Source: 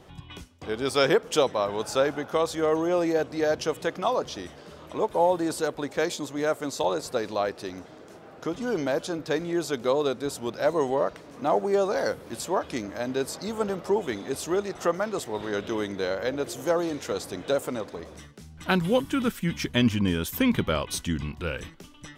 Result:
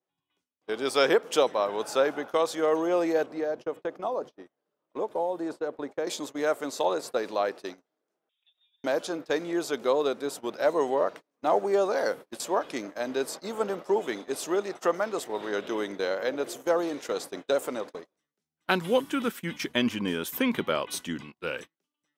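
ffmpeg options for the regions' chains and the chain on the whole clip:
-filter_complex "[0:a]asettb=1/sr,asplit=3[a][b][c];[a]atrim=end=3.264[d];[b]atrim=start=3.26:end=6.07,asetpts=PTS-STARTPTS,afade=t=in:d=0.004:c=qsin,afade=t=out:st=2.806:d=0.004:c=qsin,acrossover=split=870|2900|6400[e][f][g][h];[e]acompressor=threshold=-27dB:ratio=3[i];[f]acompressor=threshold=-42dB:ratio=3[j];[g]acompressor=threshold=-56dB:ratio=3[k];[h]acompressor=threshold=-59dB:ratio=3[l];[i][j][k][l]amix=inputs=4:normalize=0,highshelf=f=2.2k:g=-9[m];[c]atrim=start=6.066[n];[d][m]acrossfade=d=0.004:c1=hsin:c2=qsin[o];[o][n]acrossfade=d=0.004:c1=qsin:c2=hsin,asettb=1/sr,asplit=3[p][q][r];[p]atrim=end=8.294[s];[q]atrim=start=8.29:end=8.84,asetpts=PTS-STARTPTS,afade=t=in:d=0.004:c=qsin,afade=t=out:st=0.546:d=0.004:c=qsin,acompressor=threshold=-38dB:ratio=16:attack=3.2:release=140:knee=1:detection=peak,lowpass=f=3.3k:t=q:w=0.5098,lowpass=f=3.3k:t=q:w=0.6013,lowpass=f=3.3k:t=q:w=0.9,lowpass=f=3.3k:t=q:w=2.563,afreqshift=-3900[t];[r]atrim=start=8.836[u];[s][t]acrossfade=d=0.004:c1=hsin:c2=qsin[v];[v][u]acrossfade=d=0.004:c1=qsin:c2=hsin,highpass=280,agate=range=-35dB:threshold=-37dB:ratio=16:detection=peak,adynamicequalizer=threshold=0.00447:dfrequency=5800:dqfactor=0.76:tfrequency=5800:tqfactor=0.76:attack=5:release=100:ratio=0.375:range=2:mode=cutabove:tftype=bell"

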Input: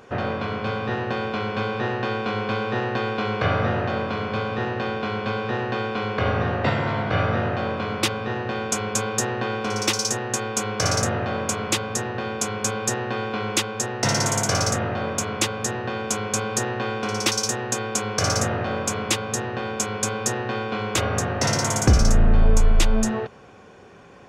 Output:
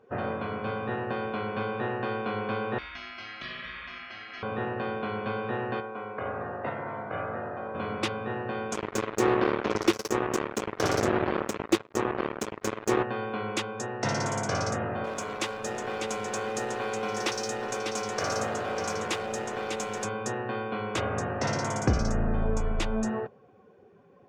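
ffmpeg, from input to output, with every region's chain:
-filter_complex "[0:a]asettb=1/sr,asplit=3[a][b][c];[a]atrim=end=2.784[d];[b]atrim=start=2.78:end=4.43,asetpts=PTS-STARTPTS,afade=t=in:d=0.004:c=qsin,afade=t=out:st=1.646:d=0.004:c=qsin,highshelf=f=7k:g=8,aeval=exprs='val(0)*sin(2*PI*1800*n/s)':c=same,acrossover=split=170|3000[e][f][g];[f]acompressor=threshold=-37dB:ratio=3:attack=3.2:release=140:knee=2.83:detection=peak[h];[e][h][g]amix=inputs=3:normalize=0[i];[c]atrim=start=4.426[j];[d][i]acrossfade=d=0.004:c1=hsin:c2=qsin[k];[k][j]acrossfade=d=0.004:c1=qsin:c2=hsin,asettb=1/sr,asplit=3[l][m][n];[l]atrim=end=5.804[o];[m]atrim=start=5.8:end=7.75,asetpts=PTS-STARTPTS,afade=t=in:d=0.004:c=qsin,afade=t=out:st=1.946:d=0.004:c=qsin,lowpass=f=1.3k:p=1,lowshelf=f=320:g=-12,aeval=exprs='sgn(val(0))*max(abs(val(0))-0.00224,0)':c=same[p];[n]atrim=start=7.746[q];[o][p]acrossfade=d=0.004:c1=hsin:c2=qsin[r];[r][q]acrossfade=d=0.004:c1=qsin:c2=hsin,asettb=1/sr,asplit=3[s][t][u];[s]atrim=end=8.744[v];[t]atrim=start=8.74:end=13.03,asetpts=PTS-STARTPTS,afade=t=in:d=0.004:c=qsin,afade=t=out:st=4.286:d=0.004:c=qsin,equalizer=f=350:w=2.4:g=15,acrusher=bits=2:mix=0:aa=0.5[w];[u]atrim=start=13.026[x];[v][w]acrossfade=d=0.004:c1=hsin:c2=qsin[y];[y][x]acrossfade=d=0.004:c1=qsin:c2=hsin,asettb=1/sr,asplit=3[z][aa][ab];[z]atrim=end=15.044[ac];[aa]atrim=start=15.04:end=20.05,asetpts=PTS-STARTPTS,afade=t=in:d=0.004:c=qsin,afade=t=out:st=5.006:d=0.004:c=qsin,bass=f=250:g=-8,treble=f=4k:g=1,acrusher=bits=6:dc=4:mix=0:aa=0.000001,aecho=1:1:598:0.531,atrim=end_sample=220941[ad];[ab]atrim=start=20.046[ae];[ac][ad]acrossfade=d=0.004:c1=hsin:c2=qsin[af];[af][ae]acrossfade=d=0.004:c1=qsin:c2=hsin,afftdn=nr=13:nf=-40,lowpass=f=2.2k:p=1,lowshelf=f=89:g=-10.5,volume=-4dB"

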